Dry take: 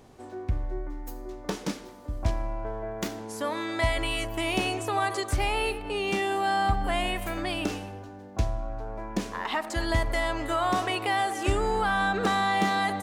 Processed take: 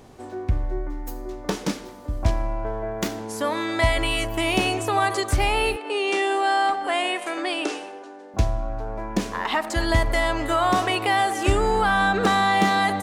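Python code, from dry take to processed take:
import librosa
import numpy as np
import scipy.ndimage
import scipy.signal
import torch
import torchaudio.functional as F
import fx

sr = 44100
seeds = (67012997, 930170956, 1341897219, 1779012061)

y = fx.ellip_bandpass(x, sr, low_hz=330.0, high_hz=9400.0, order=3, stop_db=40, at=(5.76, 8.34))
y = F.gain(torch.from_numpy(y), 5.5).numpy()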